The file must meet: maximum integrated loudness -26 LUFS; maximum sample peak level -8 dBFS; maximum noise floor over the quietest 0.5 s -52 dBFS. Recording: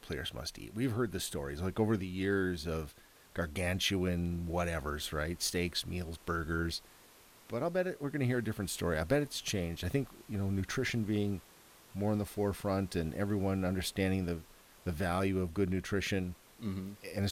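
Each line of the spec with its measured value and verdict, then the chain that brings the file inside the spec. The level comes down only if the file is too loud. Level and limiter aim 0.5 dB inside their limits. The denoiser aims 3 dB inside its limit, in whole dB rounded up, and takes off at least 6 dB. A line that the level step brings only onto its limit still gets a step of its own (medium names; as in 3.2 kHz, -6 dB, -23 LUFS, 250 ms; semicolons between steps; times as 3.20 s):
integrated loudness -35.0 LUFS: pass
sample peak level -17.0 dBFS: pass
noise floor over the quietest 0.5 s -59 dBFS: pass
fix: none needed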